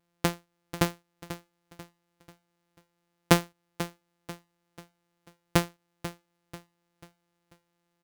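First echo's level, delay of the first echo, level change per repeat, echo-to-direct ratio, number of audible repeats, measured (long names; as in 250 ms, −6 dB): −13.0 dB, 490 ms, −8.0 dB, −12.0 dB, 3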